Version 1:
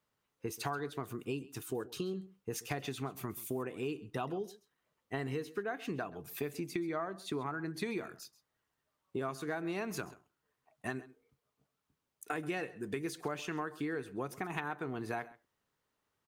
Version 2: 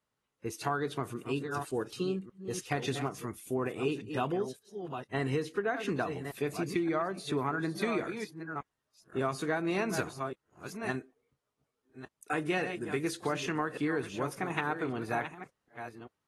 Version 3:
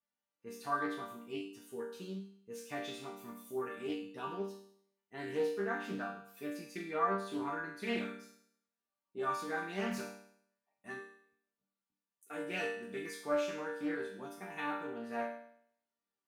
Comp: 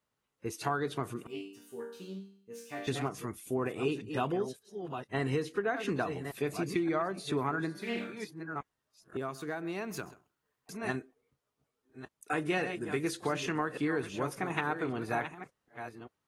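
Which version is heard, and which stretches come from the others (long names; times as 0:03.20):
2
0:01.27–0:02.87: punch in from 3
0:07.74–0:08.15: punch in from 3, crossfade 0.24 s
0:09.17–0:10.69: punch in from 1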